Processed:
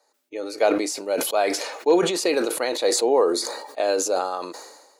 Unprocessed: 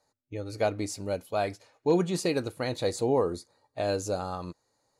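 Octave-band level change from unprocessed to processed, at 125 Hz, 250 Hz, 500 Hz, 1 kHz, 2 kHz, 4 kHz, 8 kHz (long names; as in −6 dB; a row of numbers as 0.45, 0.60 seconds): −11.0, +5.0, +7.5, +8.0, +9.0, +11.5, +13.0 decibels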